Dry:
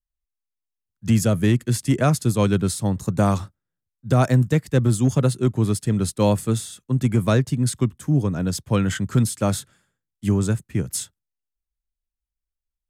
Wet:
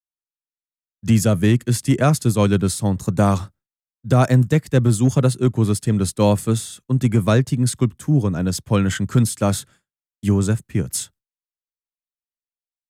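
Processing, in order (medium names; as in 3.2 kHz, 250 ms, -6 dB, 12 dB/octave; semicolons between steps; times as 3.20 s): expander -45 dBFS; trim +2.5 dB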